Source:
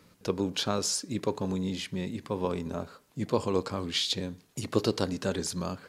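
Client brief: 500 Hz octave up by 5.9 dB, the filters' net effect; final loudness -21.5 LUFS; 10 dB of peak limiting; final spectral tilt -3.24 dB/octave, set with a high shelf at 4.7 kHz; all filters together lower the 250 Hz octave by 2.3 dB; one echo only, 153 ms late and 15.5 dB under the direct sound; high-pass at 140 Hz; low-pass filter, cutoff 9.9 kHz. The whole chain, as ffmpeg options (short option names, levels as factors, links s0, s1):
-af "highpass=140,lowpass=9900,equalizer=f=250:t=o:g=-5.5,equalizer=f=500:t=o:g=8.5,highshelf=f=4700:g=5,alimiter=limit=0.119:level=0:latency=1,aecho=1:1:153:0.168,volume=2.99"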